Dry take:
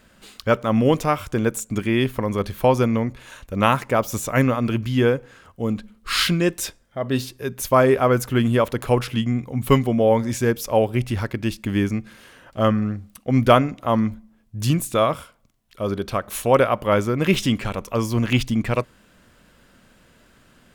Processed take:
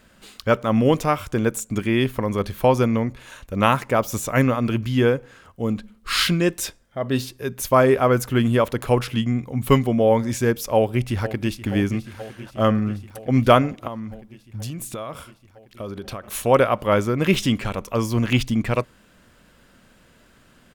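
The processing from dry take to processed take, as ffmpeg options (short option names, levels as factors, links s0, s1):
-filter_complex "[0:a]asplit=2[s0][s1];[s1]afade=t=in:st=10.75:d=0.01,afade=t=out:st=11.66:d=0.01,aecho=0:1:480|960|1440|1920|2400|2880|3360|3840|4320|4800|5280|5760:0.188365|0.150692|0.120554|0.0964428|0.0771543|0.0617234|0.0493787|0.039503|0.0316024|0.0252819|0.0202255|0.0161804[s2];[s0][s2]amix=inputs=2:normalize=0,asettb=1/sr,asplit=3[s3][s4][s5];[s3]atrim=end=13.874[s6];[s4]atrim=start=13.87:end=16.24,asetpts=PTS-STARTPTS,afade=t=in:d=0.004:c=qsin,afade=t=out:st=2.366:d=0.004:c=qsin,acompressor=threshold=0.0447:ratio=12:attack=3.2:release=140:knee=1:detection=peak[s7];[s5]atrim=start=16.236[s8];[s6][s7]acrossfade=d=0.004:c1=hsin:c2=qsin[s9];[s9][s8]acrossfade=d=0.004:c1=qsin:c2=hsin"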